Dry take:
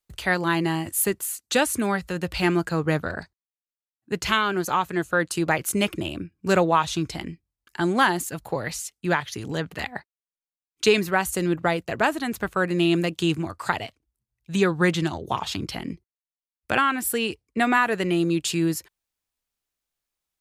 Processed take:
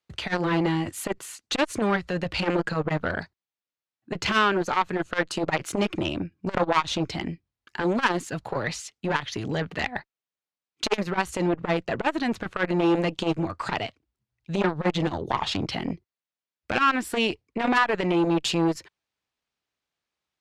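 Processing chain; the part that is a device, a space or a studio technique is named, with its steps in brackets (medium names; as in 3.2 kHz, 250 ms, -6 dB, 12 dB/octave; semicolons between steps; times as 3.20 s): valve radio (band-pass 86–4500 Hz; valve stage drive 16 dB, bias 0.45; transformer saturation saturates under 810 Hz); trim +6 dB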